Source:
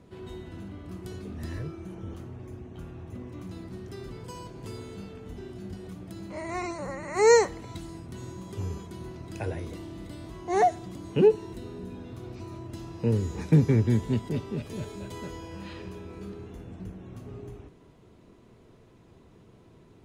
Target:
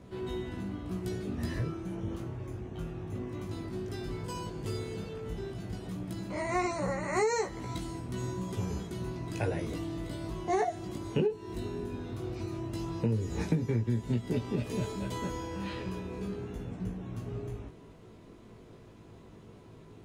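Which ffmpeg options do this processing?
ffmpeg -i in.wav -af "flanger=delay=16:depth=3.1:speed=0.13,acompressor=threshold=-31dB:ratio=20,volume=6dB" out.wav

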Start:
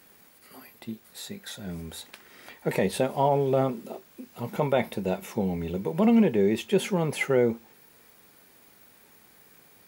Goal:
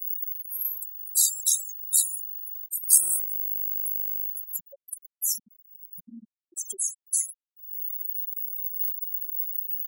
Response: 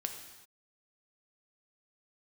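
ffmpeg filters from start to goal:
-filter_complex "[0:a]asettb=1/sr,asplit=3[link_01][link_02][link_03];[link_01]atrim=end=2.774[link_04];[link_02]atrim=start=2.77:end=4.28,asetpts=PTS-STARTPTS,afade=type=in:duration=0.004:curve=qsin,afade=type=out:start_time=1.506:duration=0.004:curve=qsin,aderivative[link_05];[link_03]atrim=start=4.276[link_06];[link_04][link_05]acrossfade=duration=0.004:curve1=hsin:curve2=qsin[link_07];[link_07][link_06]acrossfade=duration=0.004:curve1=qsin:curve2=hsin,asettb=1/sr,asplit=3[link_08][link_09][link_10];[link_08]atrim=end=4.924[link_11];[link_09]atrim=start=4.92:end=5.93,asetpts=PTS-STARTPTS,afade=type=in:duration=0.004:curve=qsin,afade=type=out:start_time=1.006:duration=0.004:curve=qsin,aecho=1:1:3.5:0.41,atrim=end_sample=44541[link_12];[link_10]atrim=start=5.926[link_13];[link_11][link_12]acrossfade=duration=0.004:curve1=hsin:curve2=qsin[link_14];[link_14][link_13]acrossfade=duration=0.004:curve1=qsin:curve2=hsin[link_15];[1:a]atrim=start_sample=2205,asetrate=70560,aresample=44100[link_16];[link_15][link_16]afir=irnorm=-1:irlink=0,acrossover=split=460|4700[link_17][link_18][link_19];[link_19]acontrast=82[link_20];[link_17][link_18][link_20]amix=inputs=3:normalize=0,tremolo=f=75:d=0.462,aecho=1:1:177|354|531:0.158|0.0475|0.0143,acompressor=threshold=-38dB:ratio=5,aexciter=amount=14.7:drive=7.1:freq=4000,afftfilt=real='re*gte(hypot(re,im),0.126)':imag='im*gte(hypot(re,im),0.126)':win_size=1024:overlap=0.75,volume=-2.5dB"

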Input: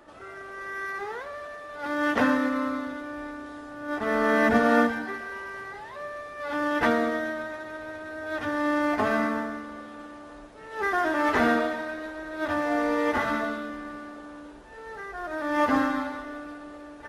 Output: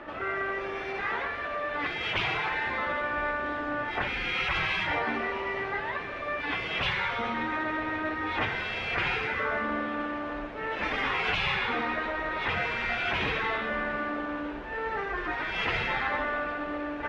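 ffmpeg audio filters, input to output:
ffmpeg -i in.wav -af "lowpass=frequency=2500:width_type=q:width=1.8,afftfilt=real='re*lt(hypot(re,im),0.0891)':imag='im*lt(hypot(re,im),0.0891)':win_size=1024:overlap=0.75,volume=9dB" out.wav

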